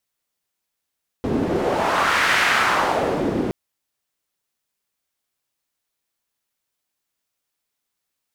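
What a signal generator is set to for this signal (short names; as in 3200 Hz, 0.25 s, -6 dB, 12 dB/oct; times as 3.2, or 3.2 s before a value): wind-like swept noise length 2.27 s, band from 280 Hz, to 1800 Hz, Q 1.6, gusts 1, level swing 4.5 dB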